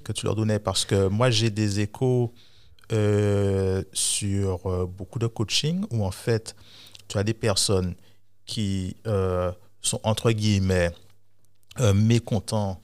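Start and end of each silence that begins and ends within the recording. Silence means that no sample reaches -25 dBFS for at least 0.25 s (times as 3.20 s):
2.26–2.90 s
6.49–6.95 s
7.92–8.49 s
9.50–9.85 s
10.89–11.79 s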